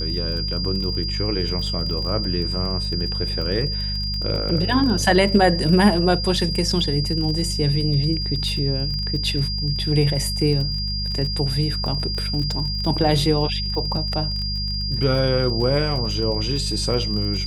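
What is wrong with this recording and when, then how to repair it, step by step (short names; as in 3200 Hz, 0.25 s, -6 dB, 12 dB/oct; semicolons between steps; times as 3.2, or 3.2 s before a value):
crackle 29/s -28 dBFS
hum 50 Hz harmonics 4 -27 dBFS
tone 4800 Hz -26 dBFS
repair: de-click; de-hum 50 Hz, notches 4; notch 4800 Hz, Q 30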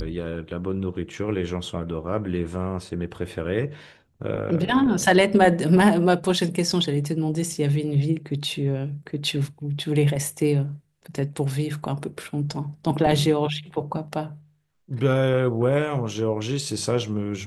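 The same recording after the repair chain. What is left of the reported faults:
none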